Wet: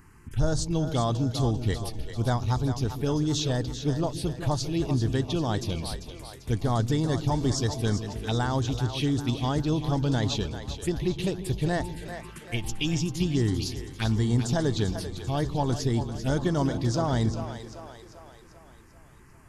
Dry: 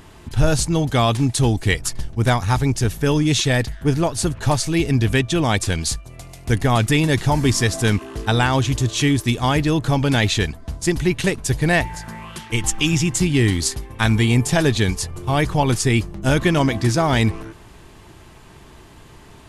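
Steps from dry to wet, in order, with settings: envelope phaser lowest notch 590 Hz, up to 2500 Hz, full sweep at -13 dBFS; split-band echo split 380 Hz, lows 0.146 s, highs 0.393 s, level -9.5 dB; gain -8 dB

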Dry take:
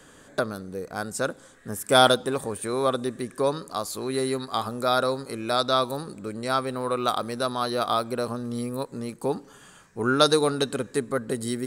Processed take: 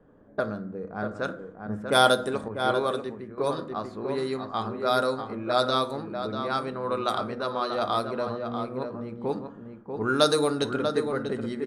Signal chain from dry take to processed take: low-pass opened by the level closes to 650 Hz, open at -18 dBFS; outdoor echo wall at 110 m, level -6 dB; on a send at -8.5 dB: reverb RT60 0.60 s, pre-delay 5 ms; 2.48–3.38 on the sum: three-band expander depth 70%; gain -3 dB

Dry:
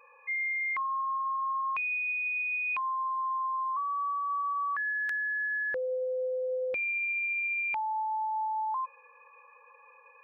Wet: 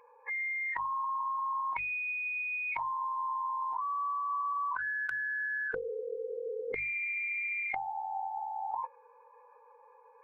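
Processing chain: tilt -1.5 dB/oct; notches 50/100/150 Hz; formant shift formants -2 st; gain -1.5 dB

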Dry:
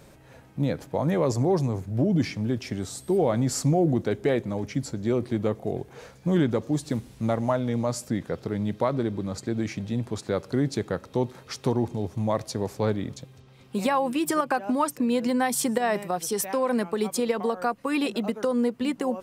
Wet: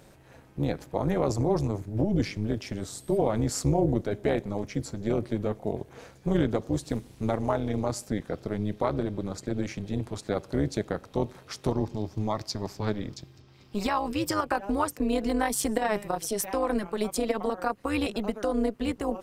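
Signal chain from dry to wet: 11.72–14.43 thirty-one-band EQ 500 Hz -10 dB, 5000 Hz +9 dB, 10000 Hz -9 dB; AM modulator 210 Hz, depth 65%; gain +1 dB

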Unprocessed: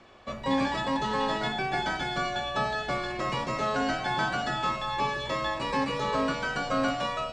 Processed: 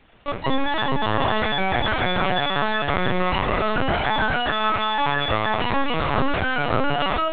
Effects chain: HPF 140 Hz 12 dB/oct; low shelf 220 Hz -9 dB; in parallel at -2 dB: negative-ratio compressor -34 dBFS, ratio -1; on the sum: crossover distortion -46.5 dBFS; small resonant body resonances 240/350/1800/2800 Hz, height 7 dB, ringing for 45 ms; on a send: diffused feedback echo 0.508 s, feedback 49%, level -9 dB; on the sum: LPC vocoder at 8 kHz pitch kept; gain +5 dB

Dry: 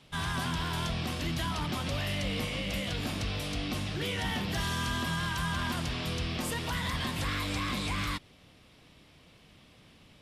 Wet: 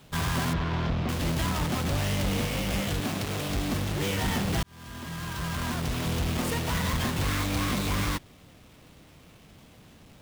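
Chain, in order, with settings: half-waves squared off; 0.53–1.09 air absorption 220 m; 3–3.49 HPF 120 Hz; 4.63–6.1 fade in

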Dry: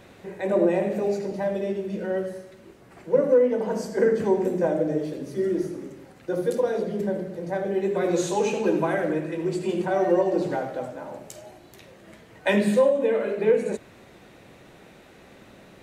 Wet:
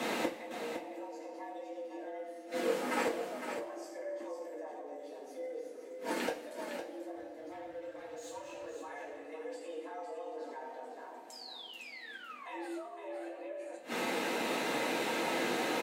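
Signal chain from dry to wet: low shelf 410 Hz -5 dB; in parallel at +2 dB: compressor, threshold -35 dBFS, peak gain reduction 17.5 dB; on the sum: limiter -20.5 dBFS, peak gain reduction 11 dB; 11.32–12.69 painted sound fall 640–5100 Hz -32 dBFS; frequency shift +130 Hz; 7.15–8.75 overloaded stage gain 26.5 dB; flipped gate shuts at -29 dBFS, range -27 dB; echo 0.509 s -8 dB; two-slope reverb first 0.24 s, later 1.6 s, from -18 dB, DRR -2 dB; gain +6 dB

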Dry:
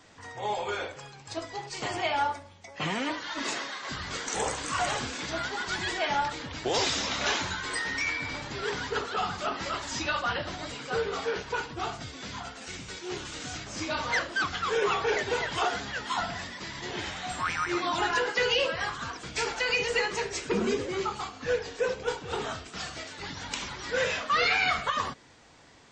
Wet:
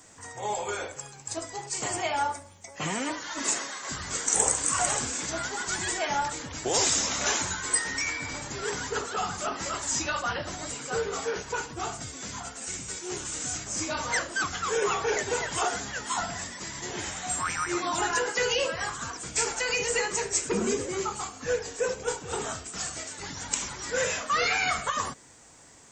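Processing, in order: resonant high shelf 5800 Hz +13.5 dB, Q 1.5

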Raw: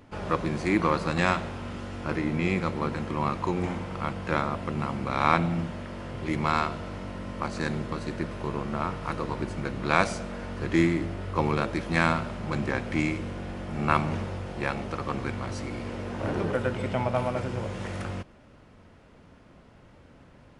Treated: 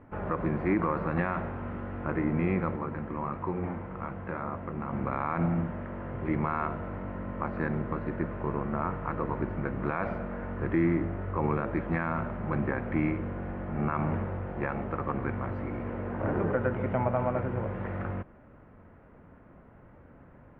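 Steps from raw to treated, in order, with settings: LPF 1900 Hz 24 dB/oct; limiter -16.5 dBFS, peak gain reduction 11.5 dB; 2.76–4.93 flange 1.2 Hz, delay 8.7 ms, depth 9.1 ms, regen -53%

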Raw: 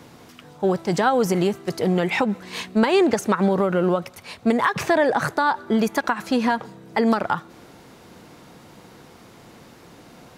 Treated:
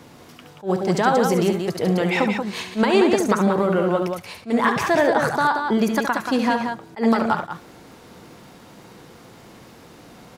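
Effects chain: crackle 80/s -46 dBFS; loudspeakers at several distances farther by 24 m -8 dB, 62 m -6 dB; attack slew limiter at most 280 dB/s

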